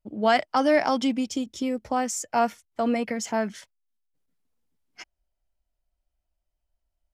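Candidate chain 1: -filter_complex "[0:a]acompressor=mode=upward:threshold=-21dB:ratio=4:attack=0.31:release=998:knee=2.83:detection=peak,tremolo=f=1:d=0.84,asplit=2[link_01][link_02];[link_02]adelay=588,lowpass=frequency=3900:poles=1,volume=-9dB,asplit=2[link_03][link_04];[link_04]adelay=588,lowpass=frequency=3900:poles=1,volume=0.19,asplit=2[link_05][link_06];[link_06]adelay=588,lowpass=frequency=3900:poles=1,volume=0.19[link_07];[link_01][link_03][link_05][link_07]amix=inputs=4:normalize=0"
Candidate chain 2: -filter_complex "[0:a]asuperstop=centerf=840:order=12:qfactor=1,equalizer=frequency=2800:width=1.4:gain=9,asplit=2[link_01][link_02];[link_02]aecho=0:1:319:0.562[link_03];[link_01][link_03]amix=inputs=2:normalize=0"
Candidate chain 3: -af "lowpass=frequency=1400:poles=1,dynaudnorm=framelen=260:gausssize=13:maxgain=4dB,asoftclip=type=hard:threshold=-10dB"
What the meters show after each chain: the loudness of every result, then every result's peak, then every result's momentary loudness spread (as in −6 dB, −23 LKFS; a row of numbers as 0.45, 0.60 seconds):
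−29.5, −26.0, −25.0 LKFS; −11.5, −8.5, −10.0 dBFS; 19, 15, 6 LU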